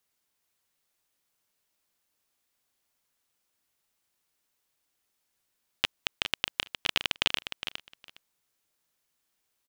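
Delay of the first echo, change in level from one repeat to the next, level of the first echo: 411 ms, -16.5 dB, -9.0 dB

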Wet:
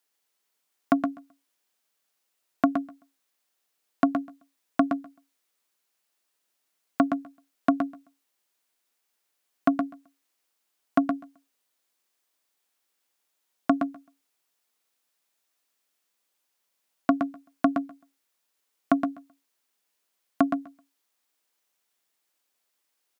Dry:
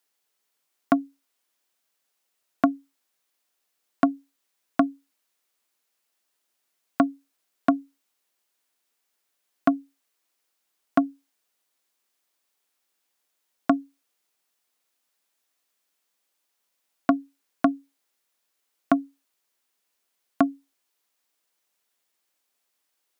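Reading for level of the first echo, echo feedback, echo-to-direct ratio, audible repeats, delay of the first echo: -6.5 dB, no regular repeats, -6.5 dB, 2, 118 ms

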